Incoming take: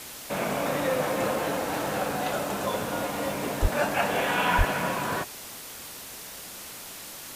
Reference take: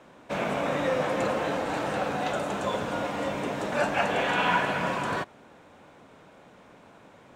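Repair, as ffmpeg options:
-filter_complex "[0:a]adeclick=t=4,asplit=3[a][b][c];[a]afade=t=out:st=3.61:d=0.02[d];[b]highpass=f=140:w=0.5412,highpass=f=140:w=1.3066,afade=t=in:st=3.61:d=0.02,afade=t=out:st=3.73:d=0.02[e];[c]afade=t=in:st=3.73:d=0.02[f];[d][e][f]amix=inputs=3:normalize=0,asplit=3[g][h][i];[g]afade=t=out:st=4.57:d=0.02[j];[h]highpass=f=140:w=0.5412,highpass=f=140:w=1.3066,afade=t=in:st=4.57:d=0.02,afade=t=out:st=4.69:d=0.02[k];[i]afade=t=in:st=4.69:d=0.02[l];[j][k][l]amix=inputs=3:normalize=0,afftdn=nr=12:nf=-41"

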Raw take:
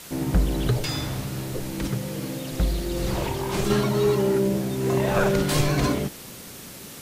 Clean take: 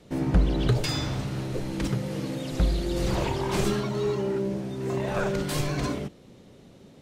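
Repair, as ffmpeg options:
-af "afwtdn=0.0089,asetnsamples=n=441:p=0,asendcmd='3.7 volume volume -6dB',volume=0dB"

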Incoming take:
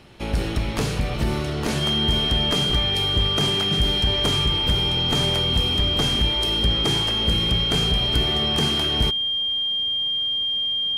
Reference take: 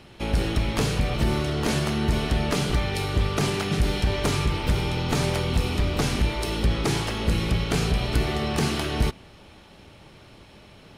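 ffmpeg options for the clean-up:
-af "bandreject=f=3.2k:w=30"

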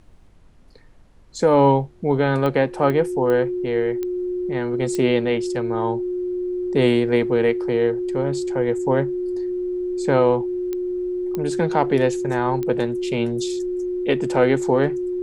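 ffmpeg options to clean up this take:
-af "adeclick=t=4,bandreject=f=360:w=30,agate=range=-21dB:threshold=-31dB"

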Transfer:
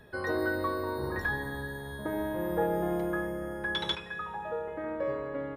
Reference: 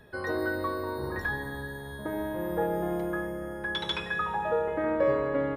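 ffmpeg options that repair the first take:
-af "asetnsamples=n=441:p=0,asendcmd='3.95 volume volume 7.5dB',volume=0dB"

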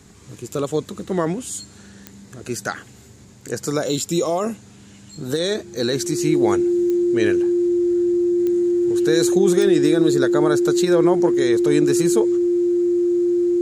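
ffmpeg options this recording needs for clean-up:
-af "adeclick=t=4,bandreject=f=350:w=30"

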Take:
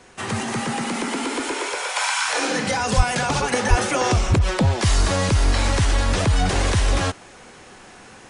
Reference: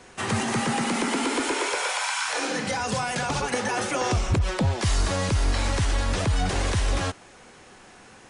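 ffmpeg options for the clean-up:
-filter_complex "[0:a]asplit=3[a][b][c];[a]afade=t=out:st=2.96:d=0.02[d];[b]highpass=f=140:w=0.5412,highpass=f=140:w=1.3066,afade=t=in:st=2.96:d=0.02,afade=t=out:st=3.08:d=0.02[e];[c]afade=t=in:st=3.08:d=0.02[f];[d][e][f]amix=inputs=3:normalize=0,asplit=3[g][h][i];[g]afade=t=out:st=3.69:d=0.02[j];[h]highpass=f=140:w=0.5412,highpass=f=140:w=1.3066,afade=t=in:st=3.69:d=0.02,afade=t=out:st=3.81:d=0.02[k];[i]afade=t=in:st=3.81:d=0.02[l];[j][k][l]amix=inputs=3:normalize=0,asetnsamples=n=441:p=0,asendcmd='1.96 volume volume -5dB',volume=0dB"

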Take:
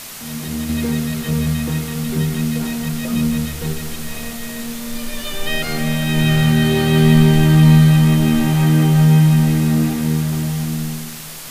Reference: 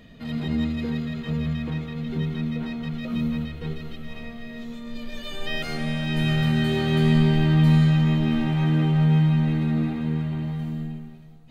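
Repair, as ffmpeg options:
-af "adeclick=t=4,afwtdn=0.025,asetnsamples=n=441:p=0,asendcmd='0.69 volume volume -7.5dB',volume=0dB"

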